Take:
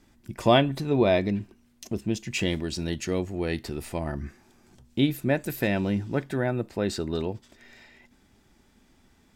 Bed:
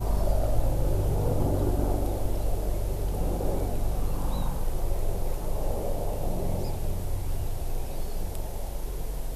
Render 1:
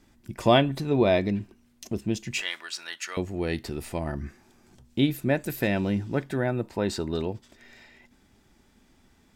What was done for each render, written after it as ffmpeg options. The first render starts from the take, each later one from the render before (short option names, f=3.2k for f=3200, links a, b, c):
-filter_complex "[0:a]asettb=1/sr,asplit=3[a][b][c];[a]atrim=end=2.414[d];[b]atrim=start=2.41:end=3.17,asetpts=PTS-STARTPTS,afade=t=in:d=0.004:c=qsin,afade=t=out:st=0.756:d=0.004:c=qsin,highpass=f=1.3k:t=q:w=2.3[e];[c]atrim=start=3.166[f];[d][e]acrossfade=d=0.004:c1=hsin:c2=qsin[g];[g][f]acrossfade=d=0.004:c1=qsin:c2=hsin,asettb=1/sr,asplit=3[h][i][j];[h]atrim=end=6.624[k];[i]atrim=start=6.62:end=7.08,asetpts=PTS-STARTPTS,afade=t=in:d=0.004:c=qsin,afade=t=out:st=0.456:d=0.004:c=qsin,equalizer=f=930:t=o:w=0.23:g=9.5[l];[j]atrim=start=7.076[m];[k][l]acrossfade=d=0.004:c1=hsin:c2=qsin[n];[n][m]acrossfade=d=0.004:c1=qsin:c2=hsin"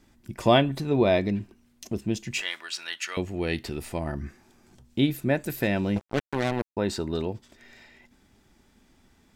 -filter_complex "[0:a]asettb=1/sr,asplit=3[a][b][c];[a]atrim=end=2.694[d];[b]atrim=start=2.69:end=3.79,asetpts=PTS-STARTPTS,afade=t=in:d=0.004:c=qsin,afade=t=out:st=1.096:d=0.004:c=qsin,equalizer=f=2.8k:w=1.5:g=5[e];[c]atrim=start=3.786[f];[d][e]acrossfade=d=0.004:c1=hsin:c2=qsin[g];[g][f]acrossfade=d=0.004:c1=qsin:c2=hsin,asettb=1/sr,asplit=3[h][i][j];[h]atrim=end=5.964[k];[i]atrim=start=5.96:end=6.77,asetpts=PTS-STARTPTS,afade=t=in:d=0.004:c=qsin,afade=t=out:st=0.806:d=0.004:c=qsin,acrusher=bits=3:mix=0:aa=0.5[l];[j]atrim=start=6.766[m];[k][l]acrossfade=d=0.004:c1=hsin:c2=qsin[n];[n][m]acrossfade=d=0.004:c1=qsin:c2=hsin"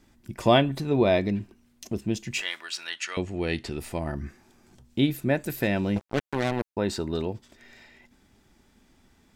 -filter_complex "[0:a]asettb=1/sr,asplit=3[a][b][c];[a]atrim=end=2.904[d];[b]atrim=start=2.9:end=3.78,asetpts=PTS-STARTPTS,afade=t=in:d=0.004:c=qsin,afade=t=out:st=0.876:d=0.004:c=qsin,lowpass=f=9.9k:w=0.5412,lowpass=f=9.9k:w=1.3066[e];[c]atrim=start=3.776[f];[d][e]acrossfade=d=0.004:c1=hsin:c2=qsin[g];[g][f]acrossfade=d=0.004:c1=qsin:c2=hsin"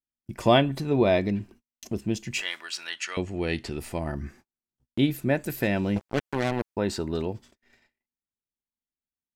-af "agate=range=-43dB:threshold=-49dB:ratio=16:detection=peak,bandreject=f=3.7k:w=23"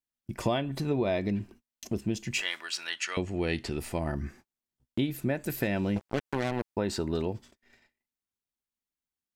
-af "acompressor=threshold=-24dB:ratio=10"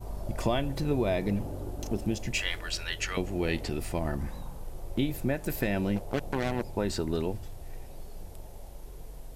-filter_complex "[1:a]volume=-11.5dB[a];[0:a][a]amix=inputs=2:normalize=0"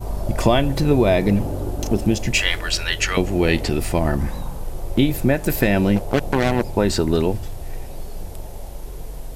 -af "volume=11.5dB"